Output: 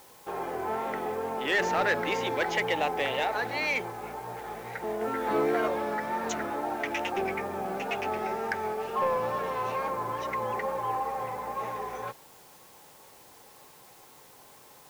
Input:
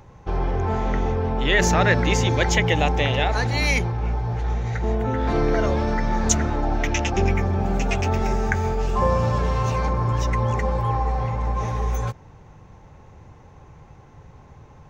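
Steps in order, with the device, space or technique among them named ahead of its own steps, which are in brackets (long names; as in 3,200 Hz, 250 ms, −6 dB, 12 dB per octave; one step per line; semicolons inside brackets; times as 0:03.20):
tape answering machine (band-pass filter 380–3,000 Hz; soft clipping −15.5 dBFS, distortion −18 dB; tape wow and flutter; white noise bed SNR 24 dB)
0:05.00–0:05.68: double-tracking delay 14 ms −3 dB
level −3 dB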